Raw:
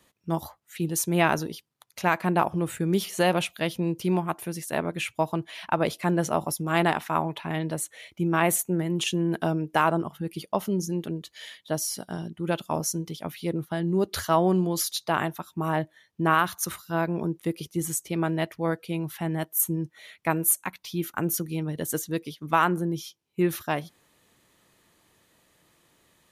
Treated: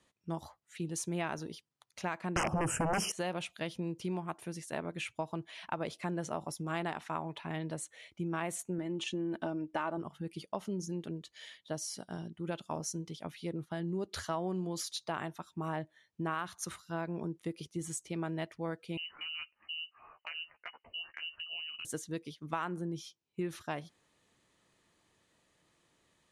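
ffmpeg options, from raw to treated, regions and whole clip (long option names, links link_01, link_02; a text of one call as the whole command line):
ffmpeg -i in.wav -filter_complex "[0:a]asettb=1/sr,asplit=3[link_01][link_02][link_03];[link_01]atrim=end=2.364[link_04];[link_02]atrim=start=2.36:end=3.12,asetpts=PTS-STARTPTS,afade=type=in:duration=0.004:curve=qsin,afade=type=out:start_time=0.756:duration=0.004:curve=qsin,equalizer=frequency=2000:width_type=o:width=0.37:gain=-14.5,aeval=exprs='0.355*sin(PI/2*7.94*val(0)/0.355)':channel_layout=same,asuperstop=centerf=3900:order=12:qfactor=2[link_05];[link_03]atrim=start=3.116[link_06];[link_04][link_05]acrossfade=duration=0.004:curve1=hsin:curve2=qsin[link_07];[link_07][link_06]acrossfade=duration=0.004:curve1=qsin:curve2=hsin,asettb=1/sr,asplit=3[link_08][link_09][link_10];[link_08]atrim=end=8.784[link_11];[link_09]atrim=start=8.78:end=9.98,asetpts=PTS-STARTPTS,afade=type=in:duration=0.004:curve=qsin,afade=type=out:start_time=1.196:duration=0.004:curve=qsin,lowpass=frequency=3500:poles=1,aecho=1:1:3.4:0.51,atrim=end_sample=52920[link_12];[link_10]atrim=start=9.976[link_13];[link_11][link_12]acrossfade=duration=0.004:curve1=hsin:curve2=qsin[link_14];[link_14][link_13]acrossfade=duration=0.004:curve1=qsin:curve2=hsin,asettb=1/sr,asplit=3[link_15][link_16][link_17];[link_15]atrim=end=18.974[link_18];[link_16]atrim=start=18.97:end=21.85,asetpts=PTS-STARTPTS,afade=type=in:duration=0.004:curve=qsin,afade=type=out:start_time=2.876:duration=0.004:curve=qsin,lowpass=frequency=2600:width_type=q:width=0.5098,lowpass=frequency=2600:width_type=q:width=0.6013,lowpass=frequency=2600:width_type=q:width=0.9,lowpass=frequency=2600:width_type=q:width=2.563,afreqshift=-3100,acompressor=threshold=-32dB:ratio=5:attack=3.2:release=140:knee=1:detection=peak,asplit=2[link_19][link_20];[link_20]adelay=13,volume=-6dB[link_21];[link_19][link_21]amix=inputs=2:normalize=0,atrim=end_sample=127008[link_22];[link_17]atrim=start=21.846[link_23];[link_18][link_22]acrossfade=duration=0.004:curve1=hsin:curve2=qsin[link_24];[link_24][link_23]acrossfade=duration=0.004:curve1=qsin:curve2=hsin,lowpass=frequency=9400:width=0.5412,lowpass=frequency=9400:width=1.3066,acompressor=threshold=-25dB:ratio=3,volume=-8dB" out.wav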